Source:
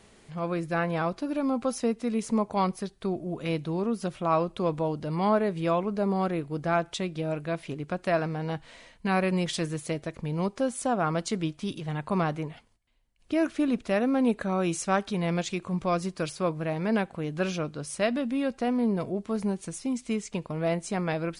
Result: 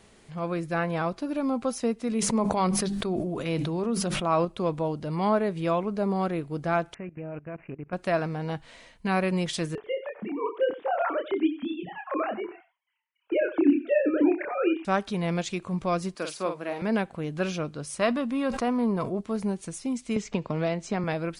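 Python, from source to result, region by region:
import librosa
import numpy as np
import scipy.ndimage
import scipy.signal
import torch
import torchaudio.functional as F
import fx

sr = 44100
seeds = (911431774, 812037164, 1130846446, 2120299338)

y = fx.chain(x, sr, fx.hum_notches(base_hz=50, count=6),
    fx.sustainer(db_per_s=21.0), at=(2.07, 4.45))
y = fx.chain(y, sr, fx.lowpass(hz=3100.0, slope=6),
    fx.level_steps(step_db=18),
    fx.resample_bad(factor=8, down='none', up='filtered'), at=(6.94, 7.93))
y = fx.chain(y, sr, fx.sine_speech(),
    fx.doubler(ms=28.0, db=-4),
    fx.echo_single(ms=90, db=-15.0), at=(9.75, 14.85))
y = fx.chain(y, sr, fx.highpass(hz=200.0, slope=24),
    fx.low_shelf(hz=440.0, db=-4.5),
    fx.doubler(ms=47.0, db=-6.5), at=(16.15, 16.82))
y = fx.chain(y, sr, fx.peak_eq(hz=1100.0, db=9.5, octaves=0.51),
    fx.sustainer(db_per_s=79.0), at=(17.99, 19.21))
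y = fx.chain(y, sr, fx.lowpass(hz=6800.0, slope=24),
    fx.band_squash(depth_pct=100), at=(20.16, 21.04))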